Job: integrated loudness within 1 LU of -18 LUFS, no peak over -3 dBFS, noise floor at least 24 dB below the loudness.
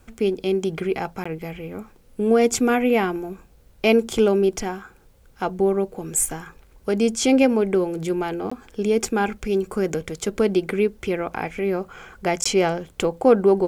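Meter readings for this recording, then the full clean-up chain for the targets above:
dropouts 3; longest dropout 15 ms; loudness -22.0 LUFS; peak -5.0 dBFS; loudness target -18.0 LUFS
-> interpolate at 1.24/8.5/12.44, 15 ms; gain +4 dB; limiter -3 dBFS

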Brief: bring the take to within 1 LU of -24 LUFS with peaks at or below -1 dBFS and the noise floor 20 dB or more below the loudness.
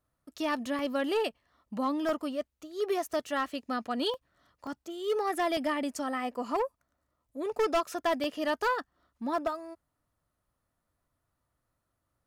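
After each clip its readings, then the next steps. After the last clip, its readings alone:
clipped 0.8%; flat tops at -22.5 dBFS; dropouts 7; longest dropout 1.5 ms; loudness -32.0 LUFS; peak -22.5 dBFS; loudness target -24.0 LUFS
-> clip repair -22.5 dBFS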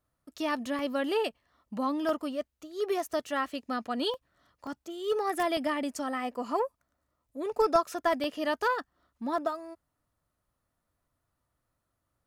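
clipped 0.0%; dropouts 7; longest dropout 1.5 ms
-> interpolate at 0.79/2.09/4.14/4.67/5.57/8.24/9.38, 1.5 ms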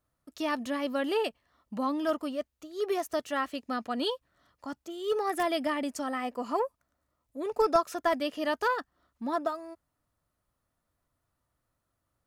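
dropouts 0; loudness -31.5 LUFS; peak -13.5 dBFS; loudness target -24.0 LUFS
-> gain +7.5 dB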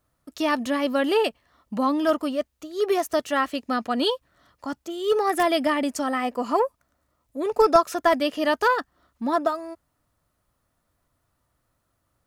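loudness -24.0 LUFS; peak -6.0 dBFS; noise floor -74 dBFS

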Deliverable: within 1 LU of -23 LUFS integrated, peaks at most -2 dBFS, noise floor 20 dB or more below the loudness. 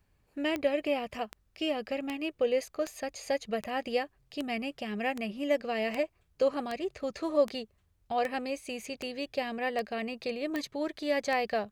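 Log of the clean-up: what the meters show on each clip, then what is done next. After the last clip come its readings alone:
clicks 15; loudness -33.0 LUFS; peak -15.0 dBFS; loudness target -23.0 LUFS
-> de-click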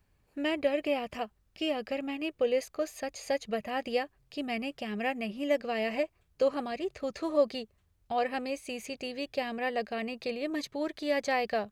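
clicks 0; loudness -33.0 LUFS; peak -15.0 dBFS; loudness target -23.0 LUFS
-> gain +10 dB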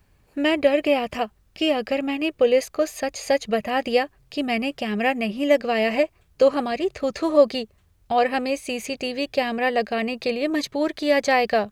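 loudness -23.0 LUFS; peak -5.0 dBFS; noise floor -61 dBFS

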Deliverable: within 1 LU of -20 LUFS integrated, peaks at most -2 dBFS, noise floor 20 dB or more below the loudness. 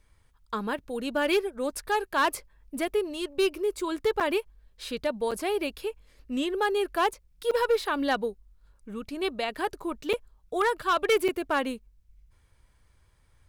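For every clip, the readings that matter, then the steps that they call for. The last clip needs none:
clipped 0.7%; flat tops at -18.0 dBFS; dropouts 5; longest dropout 6.3 ms; loudness -28.5 LUFS; peak -18.0 dBFS; loudness target -20.0 LUFS
-> clip repair -18 dBFS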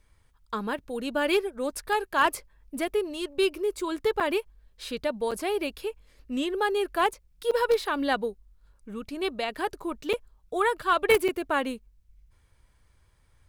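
clipped 0.0%; dropouts 5; longest dropout 6.3 ms
-> interpolate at 4.2/5.31/7.51/10.13/11.28, 6.3 ms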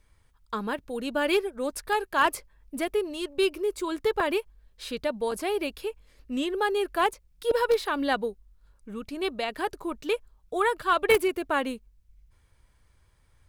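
dropouts 0; loudness -28.0 LUFS; peak -9.0 dBFS; loudness target -20.0 LUFS
-> gain +8 dB; limiter -2 dBFS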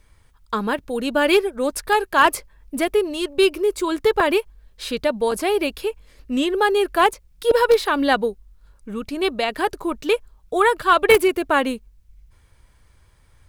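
loudness -20.0 LUFS; peak -2.0 dBFS; noise floor -56 dBFS

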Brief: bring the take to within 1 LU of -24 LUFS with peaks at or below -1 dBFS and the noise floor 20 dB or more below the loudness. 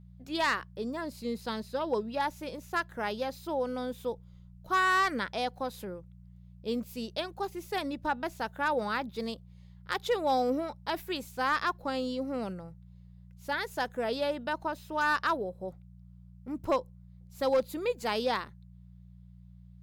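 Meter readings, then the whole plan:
clipped 0.3%; flat tops at -20.0 dBFS; hum 60 Hz; harmonics up to 180 Hz; hum level -49 dBFS; loudness -32.5 LUFS; peak -20.0 dBFS; loudness target -24.0 LUFS
-> clip repair -20 dBFS; de-hum 60 Hz, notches 3; gain +8.5 dB

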